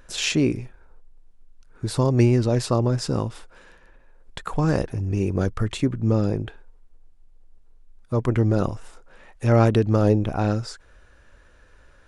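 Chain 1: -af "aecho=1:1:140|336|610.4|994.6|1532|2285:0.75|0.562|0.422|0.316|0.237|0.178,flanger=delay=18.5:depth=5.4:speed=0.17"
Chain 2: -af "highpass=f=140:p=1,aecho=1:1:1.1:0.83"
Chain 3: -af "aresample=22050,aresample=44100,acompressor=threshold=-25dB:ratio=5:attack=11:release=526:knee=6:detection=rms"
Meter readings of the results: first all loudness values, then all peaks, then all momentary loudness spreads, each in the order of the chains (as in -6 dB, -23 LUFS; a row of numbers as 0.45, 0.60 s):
-23.5, -23.0, -32.0 LUFS; -3.5, -6.5, -15.5 dBFS; 15, 14, 14 LU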